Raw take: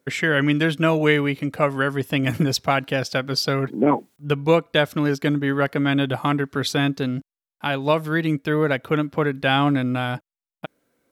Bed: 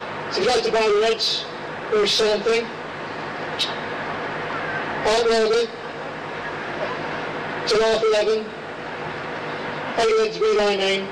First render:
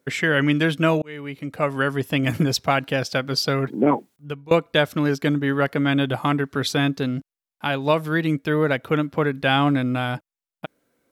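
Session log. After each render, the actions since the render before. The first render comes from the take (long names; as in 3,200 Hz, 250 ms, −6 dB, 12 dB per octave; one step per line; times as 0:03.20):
0:01.02–0:01.84: fade in
0:03.87–0:04.51: fade out, to −23 dB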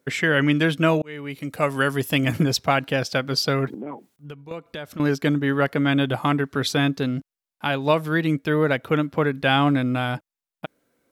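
0:01.30–0:02.24: high-shelf EQ 4,500 Hz +10.5 dB
0:03.74–0:05.00: downward compressor 3 to 1, threshold −35 dBFS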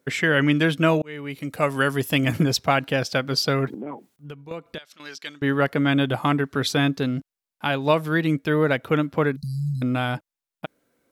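0:04.78–0:05.42: resonant band-pass 4,300 Hz, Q 1.1
0:09.36–0:09.82: linear-phase brick-wall band-stop 230–3,900 Hz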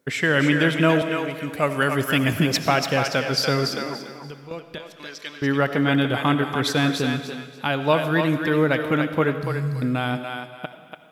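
feedback echo with a high-pass in the loop 288 ms, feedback 27%, high-pass 480 Hz, level −5 dB
comb and all-pass reverb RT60 1.5 s, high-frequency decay 1×, pre-delay 40 ms, DRR 10 dB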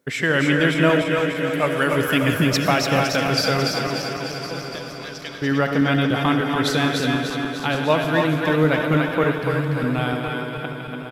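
feedback delay that plays each chunk backwards 149 ms, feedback 82%, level −8 dB
single-tap delay 1,058 ms −14 dB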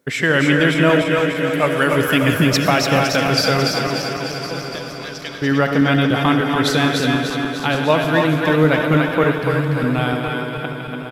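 level +3.5 dB
brickwall limiter −3 dBFS, peak gain reduction 2.5 dB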